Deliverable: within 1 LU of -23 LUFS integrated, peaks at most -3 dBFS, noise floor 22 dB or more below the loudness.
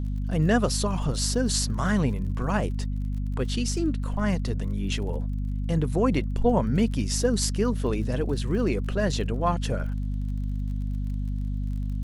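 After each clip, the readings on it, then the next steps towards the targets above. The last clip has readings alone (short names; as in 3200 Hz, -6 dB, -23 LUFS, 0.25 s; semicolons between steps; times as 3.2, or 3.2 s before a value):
ticks 34/s; hum 50 Hz; harmonics up to 250 Hz; hum level -26 dBFS; loudness -27.0 LUFS; peak -9.5 dBFS; loudness target -23.0 LUFS
-> de-click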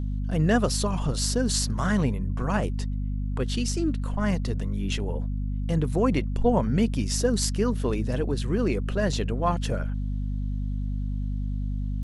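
ticks 0.083/s; hum 50 Hz; harmonics up to 250 Hz; hum level -26 dBFS
-> de-hum 50 Hz, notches 5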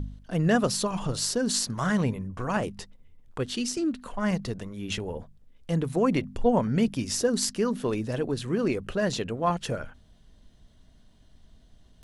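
hum none; loudness -28.0 LUFS; peak -9.0 dBFS; loudness target -23.0 LUFS
-> gain +5 dB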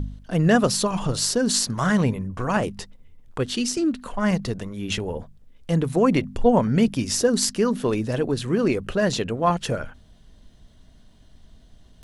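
loudness -23.0 LUFS; peak -4.0 dBFS; noise floor -52 dBFS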